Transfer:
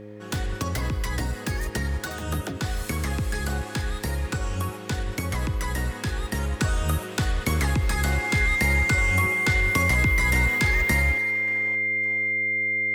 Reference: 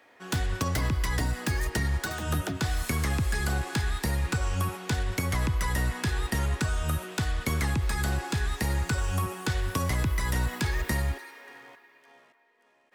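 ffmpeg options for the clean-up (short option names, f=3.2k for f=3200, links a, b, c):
-af "bandreject=f=104.7:t=h:w=4,bandreject=f=209.4:t=h:w=4,bandreject=f=314.1:t=h:w=4,bandreject=f=418.8:t=h:w=4,bandreject=f=523.5:t=h:w=4,bandreject=f=2.1k:w=30,asetnsamples=n=441:p=0,asendcmd='6.6 volume volume -4dB',volume=0dB"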